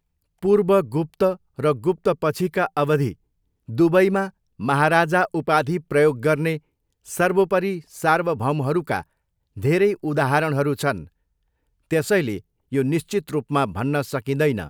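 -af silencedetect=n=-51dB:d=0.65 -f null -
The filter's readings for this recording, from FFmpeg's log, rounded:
silence_start: 11.08
silence_end: 11.91 | silence_duration: 0.82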